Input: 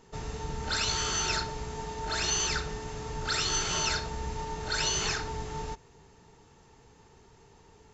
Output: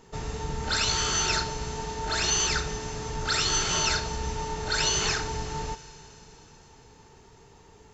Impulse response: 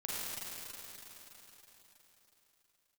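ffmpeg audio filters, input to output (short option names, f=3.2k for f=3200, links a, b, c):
-filter_complex "[0:a]asplit=2[a][b];[1:a]atrim=start_sample=2205,highshelf=f=6k:g=11[c];[b][c]afir=irnorm=-1:irlink=0,volume=-19.5dB[d];[a][d]amix=inputs=2:normalize=0,volume=3dB"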